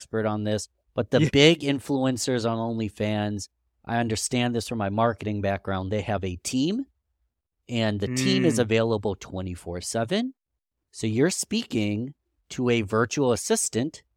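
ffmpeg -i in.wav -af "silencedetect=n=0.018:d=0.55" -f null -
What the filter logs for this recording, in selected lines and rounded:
silence_start: 6.83
silence_end: 7.69 | silence_duration: 0.87
silence_start: 10.30
silence_end: 10.96 | silence_duration: 0.66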